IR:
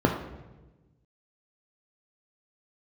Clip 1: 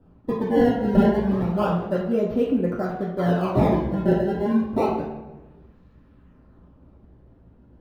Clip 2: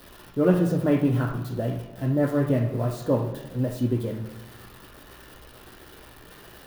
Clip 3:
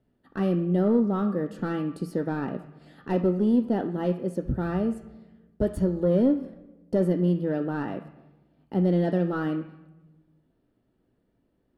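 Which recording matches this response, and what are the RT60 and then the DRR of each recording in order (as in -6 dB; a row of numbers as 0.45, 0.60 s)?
2; 1.2, 1.2, 1.2 s; -4.5, 2.0, 9.5 dB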